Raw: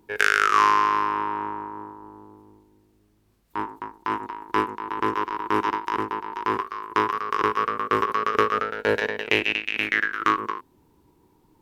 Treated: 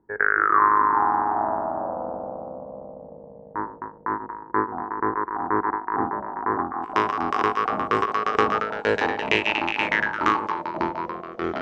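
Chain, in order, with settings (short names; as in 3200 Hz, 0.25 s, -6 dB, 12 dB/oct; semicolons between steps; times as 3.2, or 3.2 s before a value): gate -48 dBFS, range -7 dB; steep low-pass 1900 Hz 72 dB/oct, from 6.82 s 8600 Hz; echoes that change speed 0.243 s, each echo -4 st, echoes 3, each echo -6 dB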